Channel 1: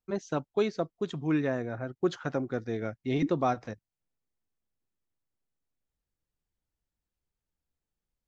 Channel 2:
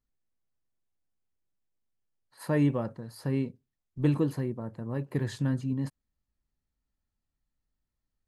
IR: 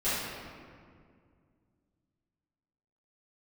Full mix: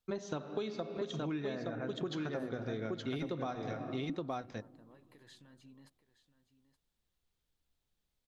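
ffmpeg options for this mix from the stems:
-filter_complex "[0:a]volume=0.5dB,asplit=3[a][b][c];[b]volume=-18.5dB[d];[c]volume=-3.5dB[e];[1:a]highpass=f=730:p=1,acompressor=threshold=-36dB:ratio=6,alimiter=level_in=16dB:limit=-24dB:level=0:latency=1:release=287,volume=-16dB,volume=-10.5dB,asplit=2[f][g];[g]volume=-15dB[h];[2:a]atrim=start_sample=2205[i];[d][i]afir=irnorm=-1:irlink=0[j];[e][h]amix=inputs=2:normalize=0,aecho=0:1:871:1[k];[a][f][j][k]amix=inputs=4:normalize=0,equalizer=f=3.6k:w=2:g=7.5,acompressor=threshold=-34dB:ratio=12"

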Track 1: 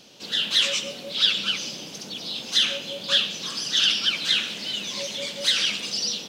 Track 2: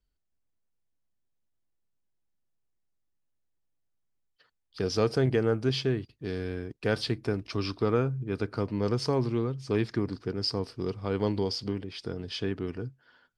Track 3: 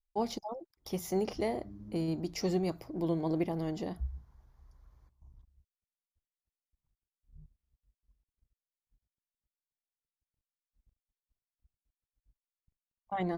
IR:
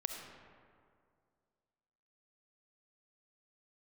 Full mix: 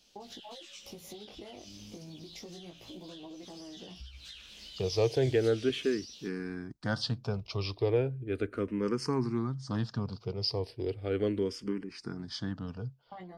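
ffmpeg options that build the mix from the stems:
-filter_complex "[0:a]highshelf=f=2.8k:g=9,acompressor=threshold=-25dB:ratio=6,volume=-16.5dB[a];[1:a]asplit=2[b][c];[c]afreqshift=-0.36[d];[b][d]amix=inputs=2:normalize=1,volume=0dB[e];[2:a]acompressor=threshold=-33dB:ratio=6,volume=-0.5dB[f];[a][f]amix=inputs=2:normalize=0,flanger=delay=15.5:depth=4.7:speed=0.29,acompressor=threshold=-43dB:ratio=12,volume=0dB[g];[e][g]amix=inputs=2:normalize=0"

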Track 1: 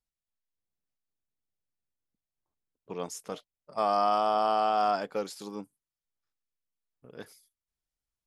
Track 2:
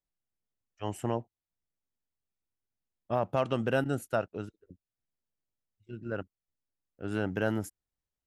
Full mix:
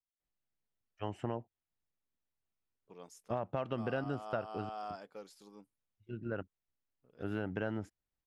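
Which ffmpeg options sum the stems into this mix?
-filter_complex "[0:a]volume=-16.5dB[a];[1:a]lowpass=3.4k,adelay=200,volume=-0.5dB[b];[a][b]amix=inputs=2:normalize=0,acompressor=threshold=-34dB:ratio=3"

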